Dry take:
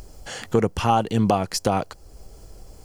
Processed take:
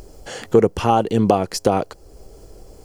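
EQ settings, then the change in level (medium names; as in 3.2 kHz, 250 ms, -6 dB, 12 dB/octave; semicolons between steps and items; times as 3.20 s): peaking EQ 410 Hz +8 dB 1.3 oct; 0.0 dB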